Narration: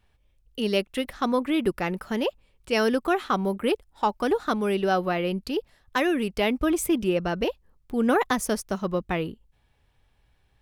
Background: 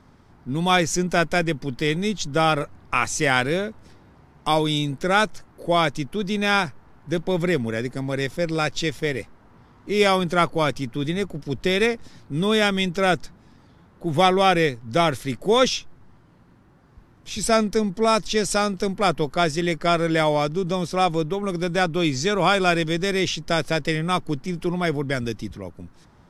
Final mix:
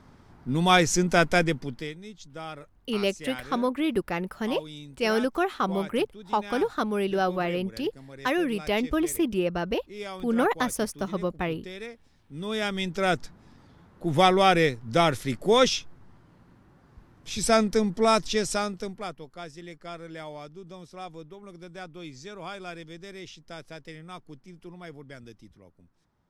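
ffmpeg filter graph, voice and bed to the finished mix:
-filter_complex "[0:a]adelay=2300,volume=0.794[s0];[1:a]volume=6.68,afade=t=out:st=1.4:d=0.54:silence=0.11885,afade=t=in:st=12.18:d=1.29:silence=0.141254,afade=t=out:st=18.13:d=1.03:silence=0.133352[s1];[s0][s1]amix=inputs=2:normalize=0"

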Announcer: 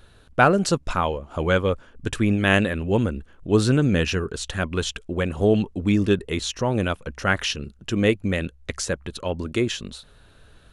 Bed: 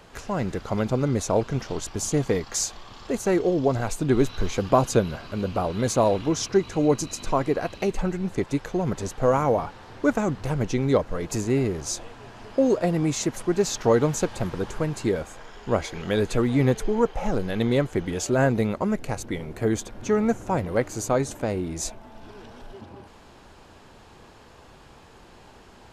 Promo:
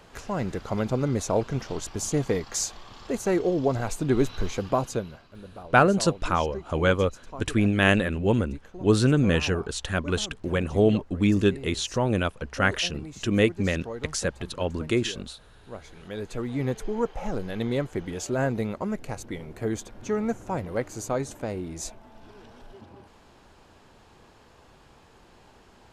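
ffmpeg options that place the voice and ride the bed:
-filter_complex "[0:a]adelay=5350,volume=0.841[s0];[1:a]volume=3.16,afade=t=out:st=4.38:d=0.91:silence=0.177828,afade=t=in:st=15.81:d=1.21:silence=0.251189[s1];[s0][s1]amix=inputs=2:normalize=0"

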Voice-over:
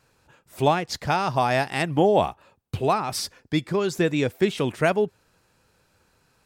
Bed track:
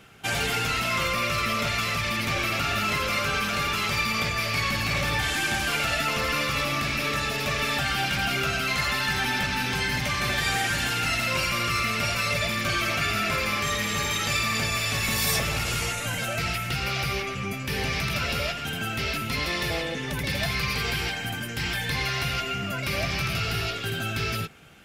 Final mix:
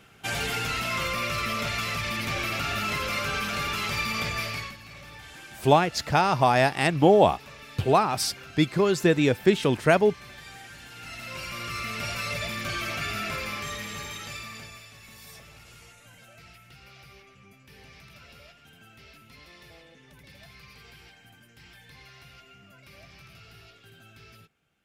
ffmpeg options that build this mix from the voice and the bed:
-filter_complex "[0:a]adelay=5050,volume=1.19[s0];[1:a]volume=3.55,afade=t=out:st=4.4:d=0.36:silence=0.149624,afade=t=in:st=10.89:d=1.24:silence=0.199526,afade=t=out:st=13.23:d=1.68:silence=0.133352[s1];[s0][s1]amix=inputs=2:normalize=0"

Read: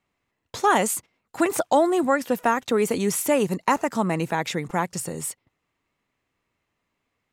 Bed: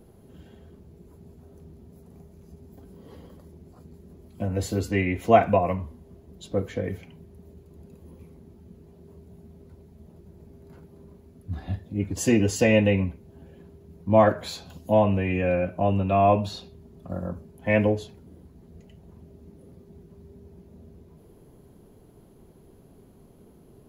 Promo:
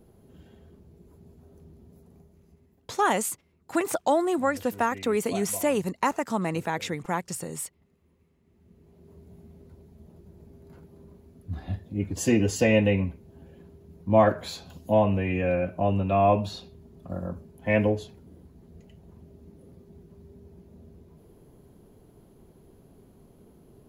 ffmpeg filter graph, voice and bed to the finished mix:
-filter_complex "[0:a]adelay=2350,volume=0.631[s0];[1:a]volume=5.01,afade=t=out:st=1.92:d=0.91:silence=0.16788,afade=t=in:st=8.41:d=0.86:silence=0.133352[s1];[s0][s1]amix=inputs=2:normalize=0"

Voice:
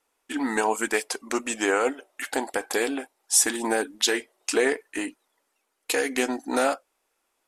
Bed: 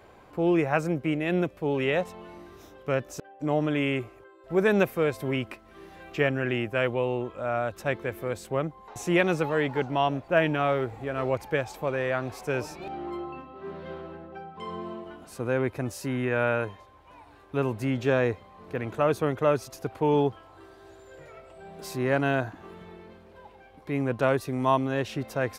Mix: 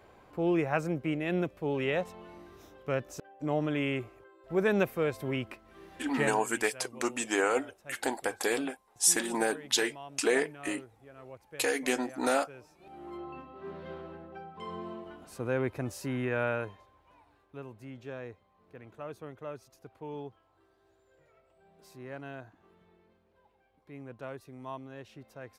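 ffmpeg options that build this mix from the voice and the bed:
-filter_complex "[0:a]adelay=5700,volume=0.596[s0];[1:a]volume=4.22,afade=t=out:st=6.19:d=0.23:silence=0.149624,afade=t=in:st=12.78:d=0.61:silence=0.141254,afade=t=out:st=16.2:d=1.44:silence=0.199526[s1];[s0][s1]amix=inputs=2:normalize=0"

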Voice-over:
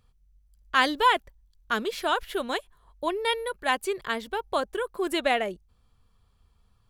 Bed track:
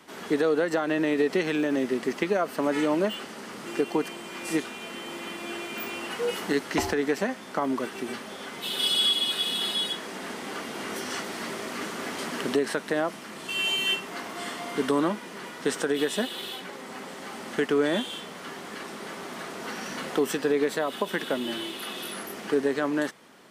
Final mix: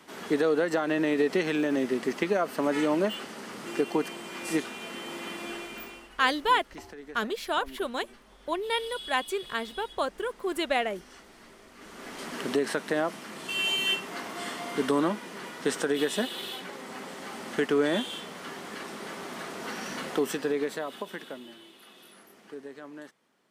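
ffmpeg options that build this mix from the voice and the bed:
-filter_complex "[0:a]adelay=5450,volume=0.75[s0];[1:a]volume=6.68,afade=t=out:st=5.41:d=0.69:silence=0.133352,afade=t=in:st=11.76:d=0.92:silence=0.133352,afade=t=out:st=19.94:d=1.61:silence=0.149624[s1];[s0][s1]amix=inputs=2:normalize=0"

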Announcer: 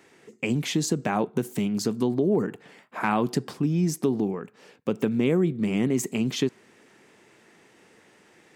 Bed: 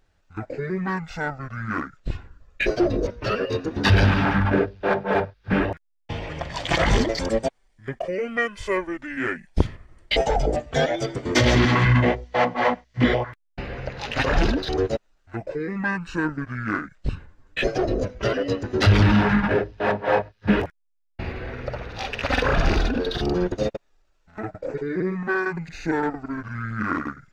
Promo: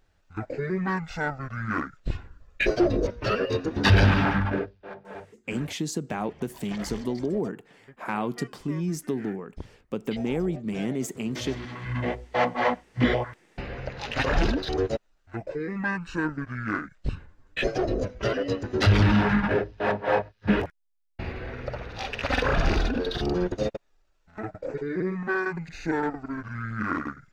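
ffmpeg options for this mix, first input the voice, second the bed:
-filter_complex "[0:a]adelay=5050,volume=0.562[s0];[1:a]volume=5.96,afade=t=out:st=4.17:d=0.66:silence=0.11885,afade=t=in:st=11.83:d=0.55:silence=0.149624[s1];[s0][s1]amix=inputs=2:normalize=0"

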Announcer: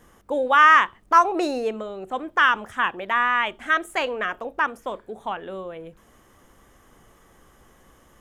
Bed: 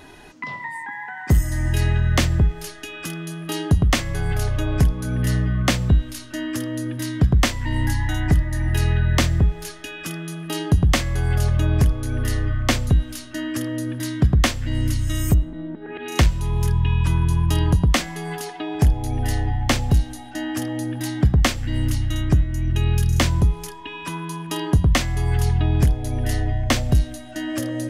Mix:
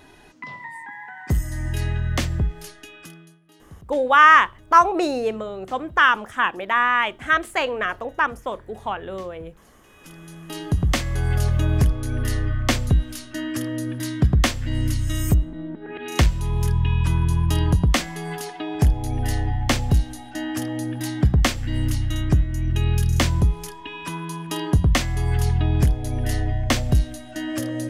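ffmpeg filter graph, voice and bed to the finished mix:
-filter_complex "[0:a]adelay=3600,volume=1.26[s0];[1:a]volume=11.9,afade=t=out:st=2.64:d=0.76:silence=0.0749894,afade=t=in:st=9.84:d=1.4:silence=0.0473151[s1];[s0][s1]amix=inputs=2:normalize=0"

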